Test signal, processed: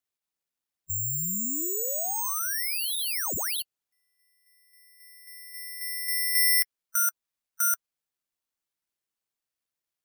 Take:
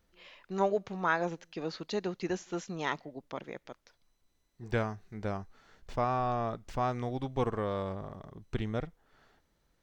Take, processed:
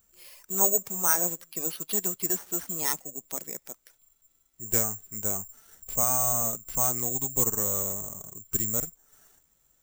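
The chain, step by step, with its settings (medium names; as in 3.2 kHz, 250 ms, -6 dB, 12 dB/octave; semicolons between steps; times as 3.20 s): coarse spectral quantiser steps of 15 dB; careless resampling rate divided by 6×, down none, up zero stuff; trim -2 dB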